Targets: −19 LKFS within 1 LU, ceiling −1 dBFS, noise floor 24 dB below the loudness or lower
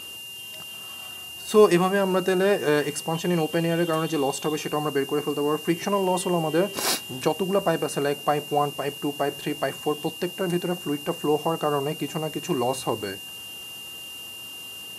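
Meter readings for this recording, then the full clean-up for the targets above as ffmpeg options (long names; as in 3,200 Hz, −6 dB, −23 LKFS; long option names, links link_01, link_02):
interfering tone 2,800 Hz; level of the tone −37 dBFS; background noise floor −39 dBFS; target noise floor −49 dBFS; integrated loudness −25.0 LKFS; sample peak −4.5 dBFS; target loudness −19.0 LKFS
→ -af "bandreject=frequency=2800:width=30"
-af "afftdn=noise_reduction=10:noise_floor=-39"
-af "volume=6dB,alimiter=limit=-1dB:level=0:latency=1"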